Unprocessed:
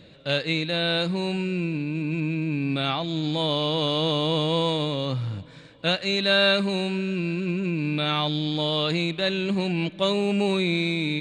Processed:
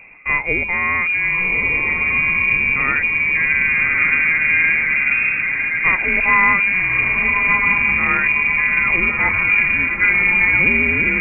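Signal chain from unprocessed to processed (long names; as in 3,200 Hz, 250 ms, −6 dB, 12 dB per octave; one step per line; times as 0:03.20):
feedback delay with all-pass diffusion 1,177 ms, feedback 51%, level −4 dB
voice inversion scrambler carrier 2,600 Hz
level +7.5 dB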